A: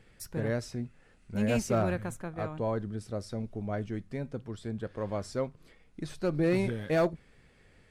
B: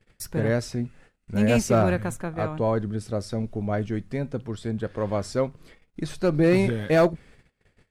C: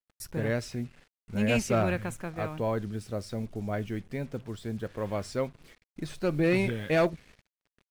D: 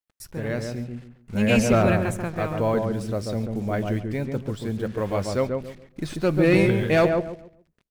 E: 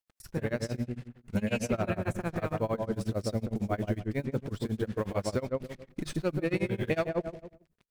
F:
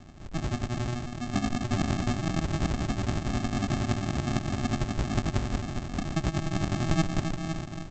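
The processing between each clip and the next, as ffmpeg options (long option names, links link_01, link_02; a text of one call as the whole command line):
ffmpeg -i in.wav -af "agate=range=-23dB:threshold=-57dB:ratio=16:detection=peak,volume=7.5dB" out.wav
ffmpeg -i in.wav -af "adynamicequalizer=threshold=0.00501:dfrequency=2600:dqfactor=1.4:tfrequency=2600:tqfactor=1.4:attack=5:release=100:ratio=0.375:range=3.5:mode=boostabove:tftype=bell,acrusher=bits=7:mix=0:aa=0.5,volume=-6dB" out.wav
ffmpeg -i in.wav -filter_complex "[0:a]dynaudnorm=framelen=420:gausssize=5:maxgain=6dB,asplit=2[link_01][link_02];[link_02]adelay=139,lowpass=frequency=1000:poles=1,volume=-3dB,asplit=2[link_03][link_04];[link_04]adelay=139,lowpass=frequency=1000:poles=1,volume=0.29,asplit=2[link_05][link_06];[link_06]adelay=139,lowpass=frequency=1000:poles=1,volume=0.29,asplit=2[link_07][link_08];[link_08]adelay=139,lowpass=frequency=1000:poles=1,volume=0.29[link_09];[link_03][link_05][link_07][link_09]amix=inputs=4:normalize=0[link_10];[link_01][link_10]amix=inputs=2:normalize=0" out.wav
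ffmpeg -i in.wav -af "acompressor=threshold=-26dB:ratio=6,tremolo=f=11:d=0.96,volume=2.5dB" out.wav
ffmpeg -i in.wav -af "aeval=exprs='val(0)+0.5*0.02*sgn(val(0))':channel_layout=same,aecho=1:1:405|810|1215|1620|2025:0.501|0.221|0.097|0.0427|0.0188,aresample=16000,acrusher=samples=33:mix=1:aa=0.000001,aresample=44100" out.wav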